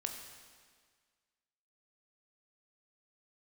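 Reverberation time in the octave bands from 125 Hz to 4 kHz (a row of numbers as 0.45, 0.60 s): 1.6, 1.7, 1.7, 1.7, 1.7, 1.6 s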